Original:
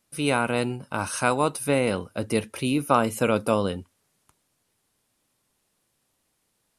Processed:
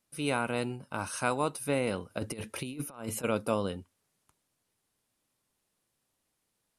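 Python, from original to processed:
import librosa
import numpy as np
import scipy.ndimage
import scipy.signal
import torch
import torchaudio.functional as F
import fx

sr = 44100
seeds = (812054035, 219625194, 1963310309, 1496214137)

y = fx.over_compress(x, sr, threshold_db=-28.0, ratio=-0.5, at=(2.09, 3.23), fade=0.02)
y = y * 10.0 ** (-7.0 / 20.0)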